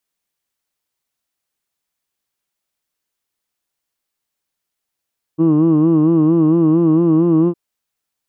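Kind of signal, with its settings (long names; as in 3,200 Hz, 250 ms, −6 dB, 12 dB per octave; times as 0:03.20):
vowel from formants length 2.16 s, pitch 157 Hz, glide +1 semitone, vibrato 4.4 Hz, F1 320 Hz, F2 1,100 Hz, F3 2,800 Hz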